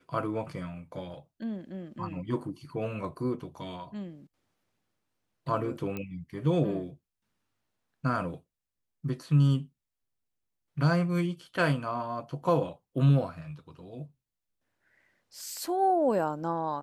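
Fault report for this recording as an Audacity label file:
5.970000	5.970000	pop -22 dBFS

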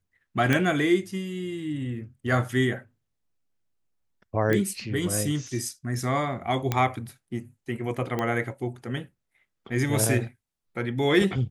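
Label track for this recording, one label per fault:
0.530000	0.530000	pop -10 dBFS
4.530000	4.530000	pop -13 dBFS
6.720000	6.720000	pop -10 dBFS
8.190000	8.190000	pop -15 dBFS

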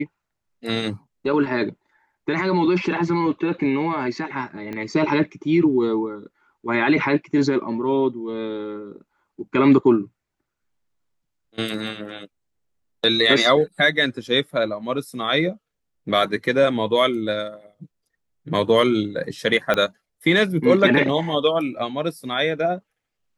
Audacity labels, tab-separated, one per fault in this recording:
4.730000	4.730000	pop -19 dBFS
11.740000	11.740000	dropout 3.2 ms
19.740000	19.740000	pop -8 dBFS

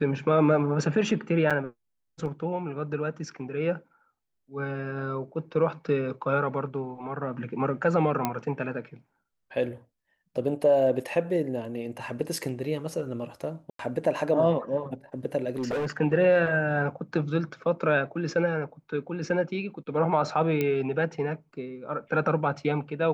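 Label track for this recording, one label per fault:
1.500000	1.510000	dropout 6.4 ms
8.250000	8.250000	pop -11 dBFS
13.700000	13.790000	dropout 93 ms
15.560000	15.970000	clipped -25.5 dBFS
20.610000	20.610000	pop -14 dBFS

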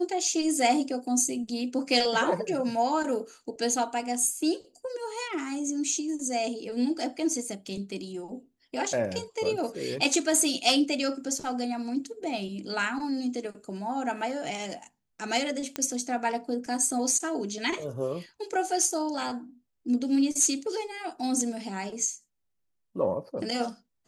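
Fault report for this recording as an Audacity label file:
15.760000	15.760000	pop -14 dBFS

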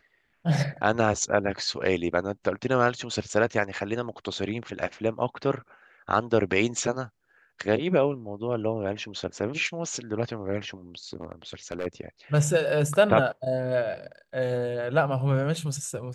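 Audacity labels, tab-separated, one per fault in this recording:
11.130000	11.870000	clipped -25.5 dBFS

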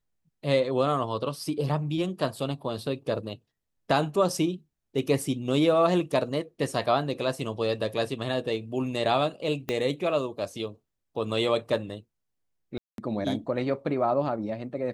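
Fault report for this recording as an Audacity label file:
9.690000	9.690000	pop -15 dBFS
12.780000	12.980000	dropout 202 ms

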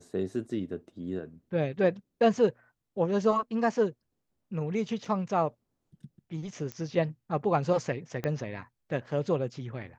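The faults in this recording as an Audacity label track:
5.050000	5.050000	dropout 3.6 ms
6.720000	6.720000	pop -22 dBFS
8.240000	8.240000	pop -18 dBFS

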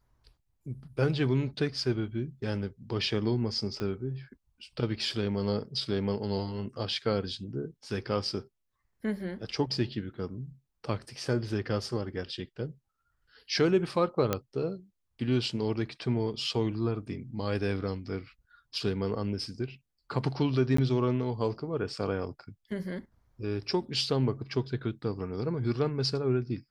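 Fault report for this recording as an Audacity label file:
3.800000	3.800000	pop -21 dBFS
14.330000	14.330000	pop -12 dBFS
20.770000	20.780000	dropout 14 ms

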